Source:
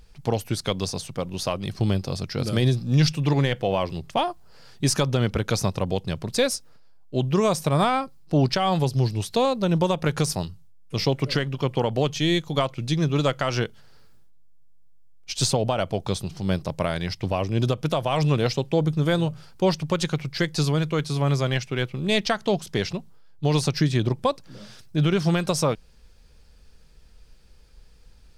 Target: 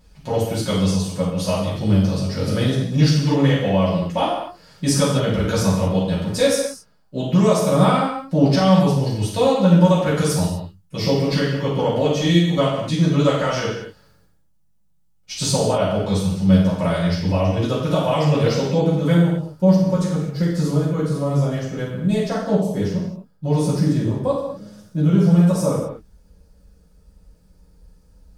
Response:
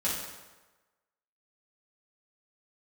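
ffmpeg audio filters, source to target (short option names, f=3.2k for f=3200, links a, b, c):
-filter_complex "[0:a]asetnsamples=n=441:p=0,asendcmd='19.12 equalizer g -15',equalizer=f=2.9k:t=o:w=2.4:g=-2.5[a];[1:a]atrim=start_sample=2205,afade=t=out:st=0.32:d=0.01,atrim=end_sample=14553[b];[a][b]afir=irnorm=-1:irlink=0,volume=-2.5dB"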